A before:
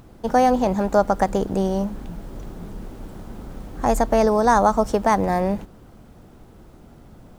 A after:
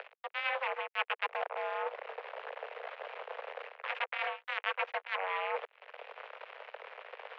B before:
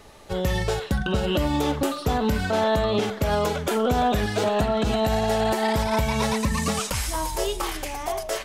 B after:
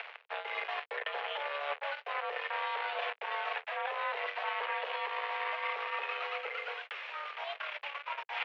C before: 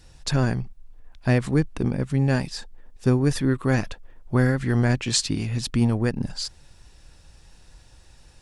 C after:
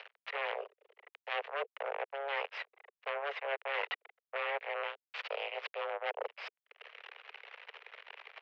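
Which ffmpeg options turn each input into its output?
-filter_complex "[0:a]aemphasis=mode=production:type=75fm,asplit=2[s0][s1];[s1]acompressor=mode=upward:threshold=0.0708:ratio=2.5,volume=1.12[s2];[s0][s2]amix=inputs=2:normalize=0,aeval=exprs='2.99*(cos(1*acos(clip(val(0)/2.99,-1,1)))-cos(1*PI/2))+0.0473*(cos(6*acos(clip(val(0)/2.99,-1,1)))-cos(6*PI/2))+0.668*(cos(7*acos(clip(val(0)/2.99,-1,1)))-cos(7*PI/2))':c=same,areverse,acompressor=threshold=0.0224:ratio=6,areverse,aeval=exprs='val(0)+0.00112*(sin(2*PI*60*n/s)+sin(2*PI*2*60*n/s)/2+sin(2*PI*3*60*n/s)/3+sin(2*PI*4*60*n/s)/4+sin(2*PI*5*60*n/s)/5)':c=same,acrusher=bits=4:mix=0:aa=0.5,crystalizer=i=7:c=0,highpass=f=180:t=q:w=0.5412,highpass=f=180:t=q:w=1.307,lowpass=f=2400:t=q:w=0.5176,lowpass=f=2400:t=q:w=0.7071,lowpass=f=2400:t=q:w=1.932,afreqshift=280"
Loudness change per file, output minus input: -17.0 LU, -12.0 LU, -15.0 LU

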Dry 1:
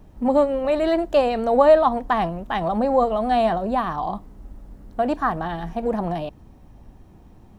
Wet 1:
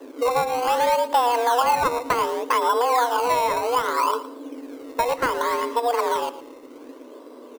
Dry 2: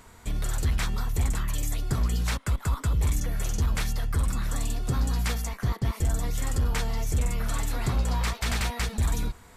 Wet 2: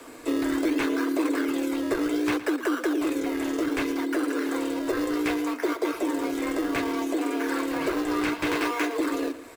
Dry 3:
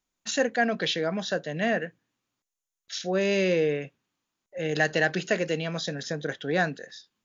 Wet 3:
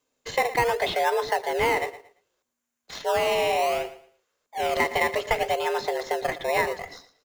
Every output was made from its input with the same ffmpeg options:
-filter_complex "[0:a]afreqshift=240,aecho=1:1:1.9:0.31,acrossover=split=210|1000|3000[s0][s1][s2][s3];[s0]acompressor=threshold=0.00355:ratio=4[s4];[s1]acompressor=threshold=0.0282:ratio=4[s5];[s2]acompressor=threshold=0.0316:ratio=4[s6];[s3]acompressor=threshold=0.002:ratio=4[s7];[s4][s5][s6][s7]amix=inputs=4:normalize=0,asubboost=boost=9.5:cutoff=70,asplit=2[s8][s9];[s9]acrusher=samples=19:mix=1:aa=0.000001:lfo=1:lforange=19:lforate=0.65,volume=0.562[s10];[s8][s10]amix=inputs=2:normalize=0,aecho=1:1:114|228|342:0.178|0.0462|0.012,volume=1.68"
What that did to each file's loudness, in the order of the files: -1.0 LU, +2.0 LU, +2.0 LU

